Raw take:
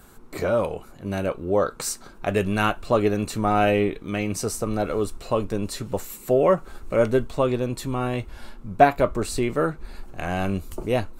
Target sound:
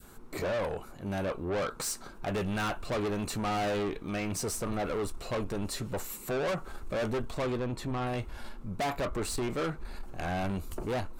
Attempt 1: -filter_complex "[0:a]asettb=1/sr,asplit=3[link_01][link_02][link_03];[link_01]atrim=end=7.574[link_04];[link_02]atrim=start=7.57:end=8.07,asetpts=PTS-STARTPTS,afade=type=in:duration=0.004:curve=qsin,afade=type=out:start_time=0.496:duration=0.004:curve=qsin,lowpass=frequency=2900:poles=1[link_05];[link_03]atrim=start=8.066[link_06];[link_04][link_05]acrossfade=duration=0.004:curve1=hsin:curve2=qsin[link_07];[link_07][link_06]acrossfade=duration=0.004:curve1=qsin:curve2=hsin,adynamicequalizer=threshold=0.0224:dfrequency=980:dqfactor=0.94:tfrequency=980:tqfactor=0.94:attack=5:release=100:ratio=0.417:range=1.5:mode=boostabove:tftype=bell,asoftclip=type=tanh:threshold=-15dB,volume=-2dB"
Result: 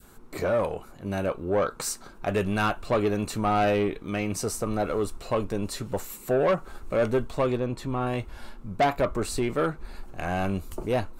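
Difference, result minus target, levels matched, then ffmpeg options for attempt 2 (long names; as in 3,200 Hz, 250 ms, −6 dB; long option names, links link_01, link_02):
soft clipping: distortion −7 dB
-filter_complex "[0:a]asettb=1/sr,asplit=3[link_01][link_02][link_03];[link_01]atrim=end=7.574[link_04];[link_02]atrim=start=7.57:end=8.07,asetpts=PTS-STARTPTS,afade=type=in:duration=0.004:curve=qsin,afade=type=out:start_time=0.496:duration=0.004:curve=qsin,lowpass=frequency=2900:poles=1[link_05];[link_03]atrim=start=8.066[link_06];[link_04][link_05]acrossfade=duration=0.004:curve1=hsin:curve2=qsin[link_07];[link_07][link_06]acrossfade=duration=0.004:curve1=qsin:curve2=hsin,adynamicequalizer=threshold=0.0224:dfrequency=980:dqfactor=0.94:tfrequency=980:tqfactor=0.94:attack=5:release=100:ratio=0.417:range=1.5:mode=boostabove:tftype=bell,asoftclip=type=tanh:threshold=-26.5dB,volume=-2dB"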